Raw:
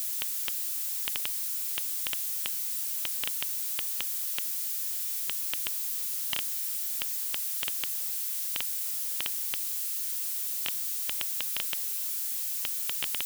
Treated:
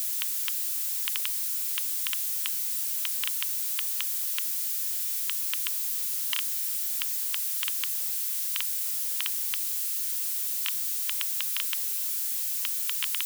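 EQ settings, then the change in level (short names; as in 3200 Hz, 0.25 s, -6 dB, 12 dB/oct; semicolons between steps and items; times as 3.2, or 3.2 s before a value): brick-wall FIR high-pass 920 Hz; notch 1200 Hz, Q 18; +2.5 dB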